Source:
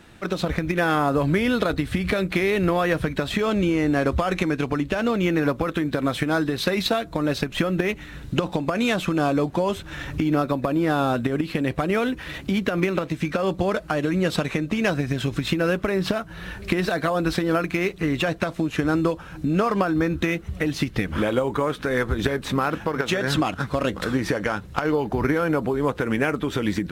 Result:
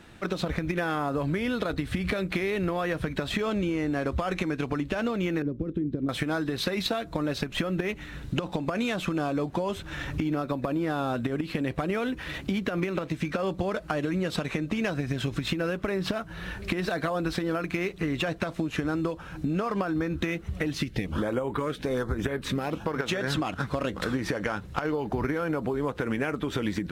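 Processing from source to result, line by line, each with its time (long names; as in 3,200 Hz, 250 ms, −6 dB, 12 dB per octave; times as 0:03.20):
0:05.42–0:06.09: drawn EQ curve 380 Hz 0 dB, 550 Hz −12 dB, 860 Hz −25 dB, 3,400 Hz −22 dB, 11,000 Hz −28 dB
0:20.75–0:22.86: auto-filter notch saw up 1.2 Hz 630–6,900 Hz
whole clip: high-shelf EQ 9,200 Hz −3.5 dB; downward compressor, threshold −23 dBFS; level −1.5 dB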